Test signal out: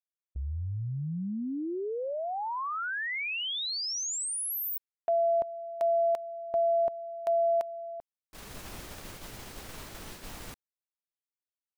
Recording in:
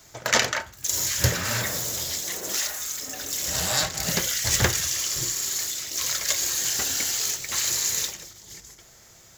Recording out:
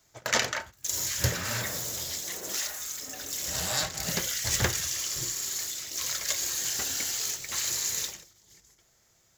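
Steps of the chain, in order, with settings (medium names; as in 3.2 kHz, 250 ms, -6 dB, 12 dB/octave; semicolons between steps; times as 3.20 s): gate -38 dBFS, range -9 dB; trim -5 dB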